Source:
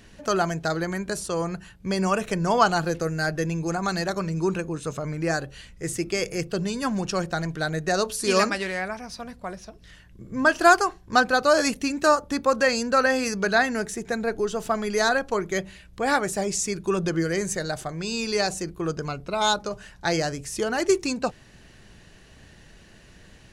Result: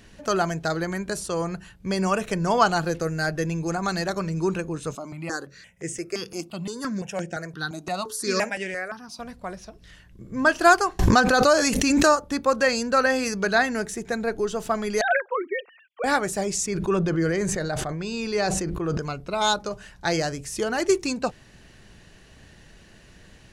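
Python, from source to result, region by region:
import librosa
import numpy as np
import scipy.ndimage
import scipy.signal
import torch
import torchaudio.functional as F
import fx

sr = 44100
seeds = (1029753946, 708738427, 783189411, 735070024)

y = fx.chain(x, sr, fx.highpass(hz=160.0, slope=12),
    fx.phaser_held(hz=5.8, low_hz=480.0, high_hz=4100.0), at=(4.95, 9.19))
y = fx.chain(y, sr, fx.peak_eq(hz=6500.0, db=4.0, octaves=0.43),
    fx.pre_swell(db_per_s=23.0), at=(10.99, 12.2))
y = fx.chain(y, sr, fx.sine_speech(),
    fx.highpass(hz=350.0, slope=6), at=(15.01, 16.04))
y = fx.chain(y, sr, fx.high_shelf(hz=4600.0, db=-12.0),
    fx.sustainer(db_per_s=21.0), at=(16.66, 18.98))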